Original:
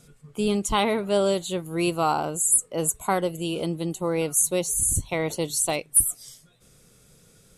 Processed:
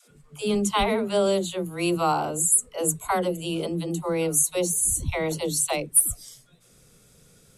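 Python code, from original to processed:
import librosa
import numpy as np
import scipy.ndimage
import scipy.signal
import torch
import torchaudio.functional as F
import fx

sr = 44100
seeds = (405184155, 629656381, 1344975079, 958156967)

y = fx.dispersion(x, sr, late='lows', ms=114.0, hz=310.0)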